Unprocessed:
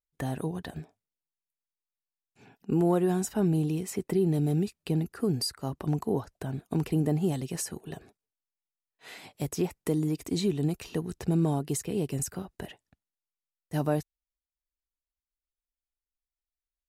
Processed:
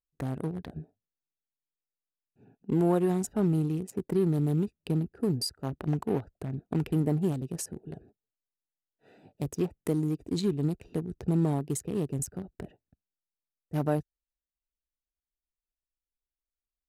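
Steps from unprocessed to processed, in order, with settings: local Wiener filter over 41 samples; 5.54–6.94 s: dynamic bell 2.5 kHz, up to +5 dB, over -54 dBFS, Q 0.92

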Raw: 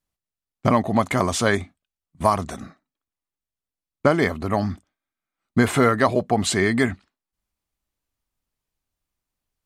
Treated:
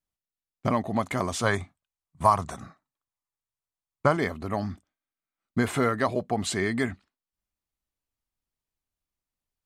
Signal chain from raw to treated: 1.43–4.17 s: graphic EQ 125/250/1000/8000 Hz +7/-4/+8/+4 dB; trim -7 dB

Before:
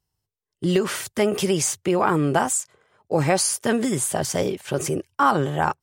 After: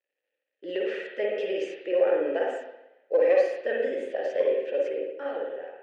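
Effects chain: fade out at the end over 0.90 s; crackle 87 per s -53 dBFS; vowel filter e; in parallel at -7 dB: one-sided clip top -24 dBFS; on the sum: high-pass 280 Hz 24 dB/octave; distance through air 130 m; reverberation RT60 0.85 s, pre-delay 46 ms, DRR -2 dB

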